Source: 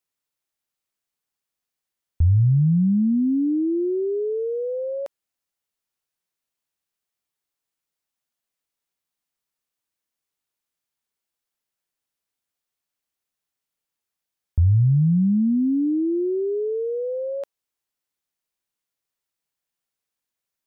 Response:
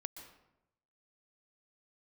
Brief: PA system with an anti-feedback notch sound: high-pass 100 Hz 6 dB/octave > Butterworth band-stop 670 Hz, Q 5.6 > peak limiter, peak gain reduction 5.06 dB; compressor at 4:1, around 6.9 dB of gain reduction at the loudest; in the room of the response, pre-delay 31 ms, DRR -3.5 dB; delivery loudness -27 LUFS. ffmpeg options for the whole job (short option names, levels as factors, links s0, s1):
-filter_complex "[0:a]acompressor=threshold=0.0708:ratio=4,asplit=2[s0][s1];[1:a]atrim=start_sample=2205,adelay=31[s2];[s1][s2]afir=irnorm=-1:irlink=0,volume=2.11[s3];[s0][s3]amix=inputs=2:normalize=0,highpass=f=100:p=1,asuperstop=centerf=670:order=8:qfactor=5.6,volume=0.668,alimiter=limit=0.1:level=0:latency=1"